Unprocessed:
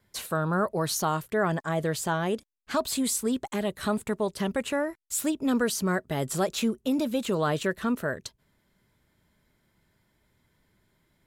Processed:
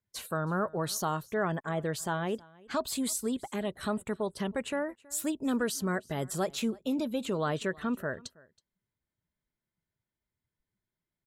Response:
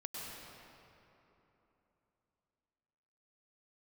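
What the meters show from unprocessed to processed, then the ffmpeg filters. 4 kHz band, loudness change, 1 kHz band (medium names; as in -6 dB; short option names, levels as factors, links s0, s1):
-4.5 dB, -4.5 dB, -4.5 dB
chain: -af "afftdn=nr=18:nf=-50,aecho=1:1:323:0.0631,volume=0.596"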